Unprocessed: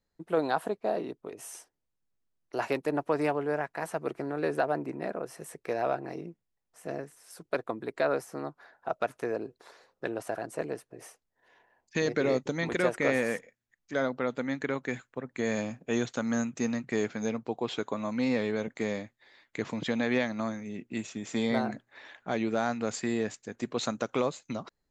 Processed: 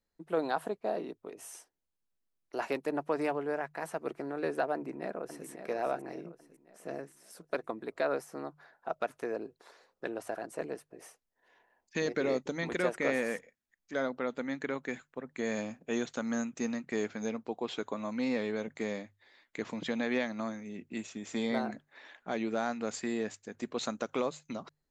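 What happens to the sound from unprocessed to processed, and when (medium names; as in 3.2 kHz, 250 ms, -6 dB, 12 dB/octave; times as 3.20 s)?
4.74–5.46 s: echo throw 550 ms, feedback 45%, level -9 dB
whole clip: peaking EQ 120 Hz -11 dB 0.32 oct; hum notches 50/100/150 Hz; trim -3.5 dB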